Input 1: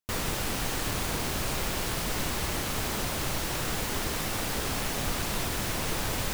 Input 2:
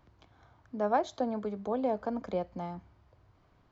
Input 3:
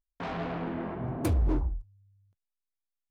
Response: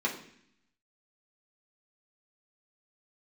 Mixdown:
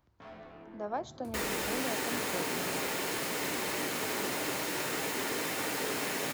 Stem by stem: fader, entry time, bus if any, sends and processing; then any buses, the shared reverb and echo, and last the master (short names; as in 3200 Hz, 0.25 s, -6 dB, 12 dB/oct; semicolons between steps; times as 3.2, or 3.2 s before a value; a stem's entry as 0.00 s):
-1.0 dB, 1.25 s, send -12 dB, HPF 280 Hz 12 dB/oct
-8.0 dB, 0.00 s, no send, high shelf 6000 Hz +9 dB
+0.5 dB, 0.00 s, no send, compressor, threshold -36 dBFS, peak gain reduction 13 dB; resonator bank D2 fifth, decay 0.36 s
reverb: on, RT60 0.65 s, pre-delay 3 ms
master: dry